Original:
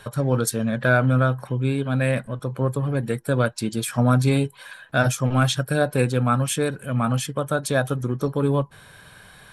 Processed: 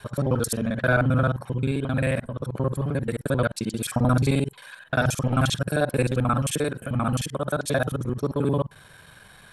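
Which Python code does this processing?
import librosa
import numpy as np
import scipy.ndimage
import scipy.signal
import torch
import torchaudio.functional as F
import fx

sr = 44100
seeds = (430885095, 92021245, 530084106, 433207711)

y = fx.local_reverse(x, sr, ms=44.0)
y = F.gain(torch.from_numpy(y), -2.0).numpy()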